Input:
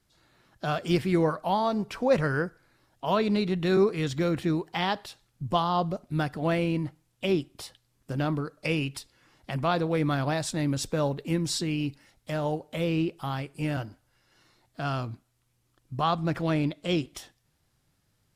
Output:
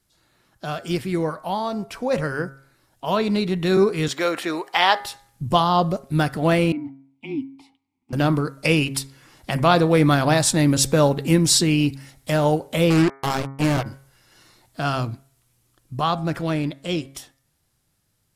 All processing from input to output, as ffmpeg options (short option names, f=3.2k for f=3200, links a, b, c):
-filter_complex "[0:a]asettb=1/sr,asplit=3[a][b][c];[a]atrim=end=4.084[d];[b]atrim=start=4.08:end=5,asetpts=PTS-STARTPTS,afade=t=in:d=0.004:c=qsin,afade=t=out:st=0.916:d=0.004:c=qsin,highpass=490,equalizer=f=1.3k:w=0.35:g=5.5[e];[c]atrim=start=4.996[f];[d][e]acrossfade=d=0.004:c1=hsin:c2=qsin[g];[g][f]acrossfade=d=0.004:c1=qsin:c2=hsin,asettb=1/sr,asplit=3[h][i][j];[h]atrim=end=6.724[k];[i]atrim=start=6.72:end=8.13,asetpts=PTS-STARTPTS,afade=t=in:d=0.004:c=qsin,afade=t=out:st=1.406:d=0.004:c=qsin,asplit=3[l][m][n];[l]bandpass=f=300:t=q:w=8,volume=0dB[o];[m]bandpass=f=870:t=q:w=8,volume=-6dB[p];[n]bandpass=f=2.24k:t=q:w=8,volume=-9dB[q];[o][p][q]amix=inputs=3:normalize=0,afreqshift=-25[r];[j]atrim=start=8.126[s];[k][r]acrossfade=d=0.004:c1=hsin:c2=qsin[t];[t][s]acrossfade=d=0.004:c1=qsin:c2=hsin,asettb=1/sr,asplit=3[u][v][w];[u]atrim=end=12.904[x];[v]atrim=start=12.9:end=13.86,asetpts=PTS-STARTPTS,afade=t=in:d=0.004:c=qsin,afade=t=out:st=0.956:d=0.004:c=qsin,highshelf=f=2.1k:g=-8.5,acrusher=bits=4:mix=0:aa=0.5[y];[w]atrim=start=13.856[z];[x][y]acrossfade=d=0.004:c1=hsin:c2=qsin[aa];[aa][z]acrossfade=d=0.004:c1=qsin:c2=hsin,equalizer=f=11k:t=o:w=1.4:g=7,bandreject=f=136:t=h:w=4,bandreject=f=272:t=h:w=4,bandreject=f=408:t=h:w=4,bandreject=f=544:t=h:w=4,bandreject=f=680:t=h:w=4,bandreject=f=816:t=h:w=4,bandreject=f=952:t=h:w=4,bandreject=f=1.088k:t=h:w=4,bandreject=f=1.224k:t=h:w=4,bandreject=f=1.36k:t=h:w=4,bandreject=f=1.496k:t=h:w=4,bandreject=f=1.632k:t=h:w=4,bandreject=f=1.768k:t=h:w=4,bandreject=f=1.904k:t=h:w=4,bandreject=f=2.04k:t=h:w=4,bandreject=f=2.176k:t=h:w=4,bandreject=f=2.312k:t=h:w=4,dynaudnorm=f=560:g=13:m=11.5dB"